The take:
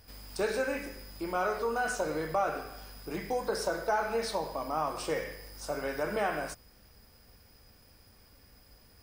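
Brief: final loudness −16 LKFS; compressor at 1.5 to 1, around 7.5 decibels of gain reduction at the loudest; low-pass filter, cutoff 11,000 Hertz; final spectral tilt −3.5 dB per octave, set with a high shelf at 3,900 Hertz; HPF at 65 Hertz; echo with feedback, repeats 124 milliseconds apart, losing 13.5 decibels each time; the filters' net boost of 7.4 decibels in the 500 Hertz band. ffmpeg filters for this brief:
ffmpeg -i in.wav -af "highpass=65,lowpass=11000,equalizer=frequency=500:width_type=o:gain=8.5,highshelf=frequency=3900:gain=4.5,acompressor=threshold=-41dB:ratio=1.5,aecho=1:1:124|248:0.211|0.0444,volume=18.5dB" out.wav

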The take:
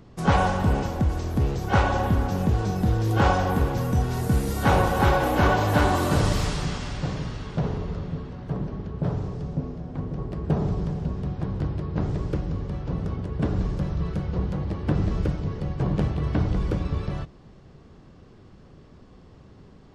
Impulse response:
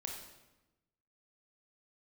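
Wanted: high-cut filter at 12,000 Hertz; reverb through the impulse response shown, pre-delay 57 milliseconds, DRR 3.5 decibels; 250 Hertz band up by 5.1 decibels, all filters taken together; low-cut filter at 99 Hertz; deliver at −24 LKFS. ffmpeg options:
-filter_complex "[0:a]highpass=99,lowpass=12000,equalizer=frequency=250:width_type=o:gain=7.5,asplit=2[link_01][link_02];[1:a]atrim=start_sample=2205,adelay=57[link_03];[link_02][link_03]afir=irnorm=-1:irlink=0,volume=-2.5dB[link_04];[link_01][link_04]amix=inputs=2:normalize=0,volume=-1.5dB"

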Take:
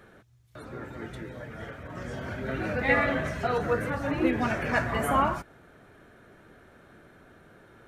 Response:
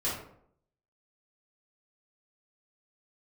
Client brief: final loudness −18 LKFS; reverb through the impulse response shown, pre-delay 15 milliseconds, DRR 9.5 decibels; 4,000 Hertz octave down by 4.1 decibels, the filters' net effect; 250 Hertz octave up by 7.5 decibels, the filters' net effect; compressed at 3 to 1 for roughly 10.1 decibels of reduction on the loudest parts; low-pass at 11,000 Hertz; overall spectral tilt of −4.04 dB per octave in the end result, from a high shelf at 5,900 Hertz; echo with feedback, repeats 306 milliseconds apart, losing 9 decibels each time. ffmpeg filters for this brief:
-filter_complex "[0:a]lowpass=11000,equalizer=frequency=250:width_type=o:gain=9,equalizer=frequency=4000:width_type=o:gain=-8,highshelf=frequency=5900:gain=5.5,acompressor=threshold=-27dB:ratio=3,aecho=1:1:306|612|918|1224:0.355|0.124|0.0435|0.0152,asplit=2[link_01][link_02];[1:a]atrim=start_sample=2205,adelay=15[link_03];[link_02][link_03]afir=irnorm=-1:irlink=0,volume=-16.5dB[link_04];[link_01][link_04]amix=inputs=2:normalize=0,volume=12.5dB"

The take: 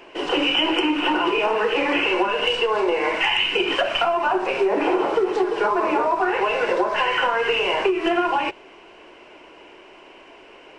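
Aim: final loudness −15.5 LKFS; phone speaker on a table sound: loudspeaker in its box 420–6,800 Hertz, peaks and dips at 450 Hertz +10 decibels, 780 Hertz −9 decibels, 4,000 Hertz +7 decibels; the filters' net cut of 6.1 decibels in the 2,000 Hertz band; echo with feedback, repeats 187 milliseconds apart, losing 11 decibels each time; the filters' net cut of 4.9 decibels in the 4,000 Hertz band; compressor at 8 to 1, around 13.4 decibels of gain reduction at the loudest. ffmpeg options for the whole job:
ffmpeg -i in.wav -af "equalizer=frequency=2000:width_type=o:gain=-7.5,equalizer=frequency=4000:width_type=o:gain=-4.5,acompressor=threshold=-31dB:ratio=8,highpass=frequency=420:width=0.5412,highpass=frequency=420:width=1.3066,equalizer=frequency=450:width_type=q:width=4:gain=10,equalizer=frequency=780:width_type=q:width=4:gain=-9,equalizer=frequency=4000:width_type=q:width=4:gain=7,lowpass=frequency=6800:width=0.5412,lowpass=frequency=6800:width=1.3066,aecho=1:1:187|374|561:0.282|0.0789|0.0221,volume=17dB" out.wav

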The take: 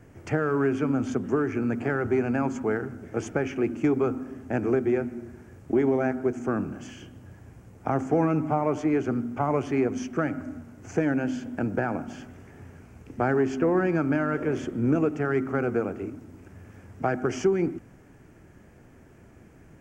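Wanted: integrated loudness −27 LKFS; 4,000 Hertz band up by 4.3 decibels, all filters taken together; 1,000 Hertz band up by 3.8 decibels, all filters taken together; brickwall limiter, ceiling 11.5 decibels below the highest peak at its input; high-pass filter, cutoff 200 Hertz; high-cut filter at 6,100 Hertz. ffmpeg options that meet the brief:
ffmpeg -i in.wav -af "highpass=200,lowpass=6100,equalizer=frequency=1000:width_type=o:gain=5,equalizer=frequency=4000:width_type=o:gain=7,volume=4dB,alimiter=limit=-17dB:level=0:latency=1" out.wav

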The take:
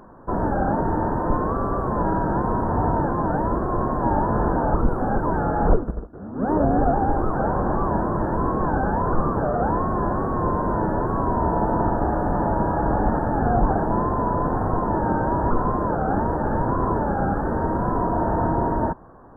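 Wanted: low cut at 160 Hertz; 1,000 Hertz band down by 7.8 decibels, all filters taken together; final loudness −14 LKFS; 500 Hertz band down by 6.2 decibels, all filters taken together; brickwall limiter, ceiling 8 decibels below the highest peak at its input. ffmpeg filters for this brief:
ffmpeg -i in.wav -af "highpass=160,equalizer=frequency=500:width_type=o:gain=-6,equalizer=frequency=1000:width_type=o:gain=-7.5,volume=16.5dB,alimiter=limit=-5dB:level=0:latency=1" out.wav

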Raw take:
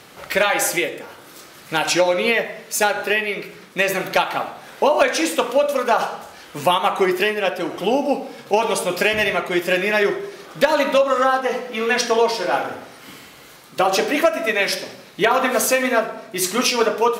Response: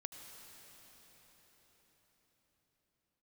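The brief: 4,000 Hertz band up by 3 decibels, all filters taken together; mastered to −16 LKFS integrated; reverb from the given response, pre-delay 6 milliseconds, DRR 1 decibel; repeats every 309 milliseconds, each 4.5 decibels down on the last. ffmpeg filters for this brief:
-filter_complex "[0:a]equalizer=frequency=4000:width_type=o:gain=4,aecho=1:1:309|618|927|1236|1545|1854|2163|2472|2781:0.596|0.357|0.214|0.129|0.0772|0.0463|0.0278|0.0167|0.01,asplit=2[link_01][link_02];[1:a]atrim=start_sample=2205,adelay=6[link_03];[link_02][link_03]afir=irnorm=-1:irlink=0,volume=2dB[link_04];[link_01][link_04]amix=inputs=2:normalize=0,volume=-1dB"

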